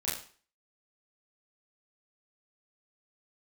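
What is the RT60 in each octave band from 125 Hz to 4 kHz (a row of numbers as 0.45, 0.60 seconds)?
0.40, 0.40, 0.40, 0.45, 0.45, 0.40 seconds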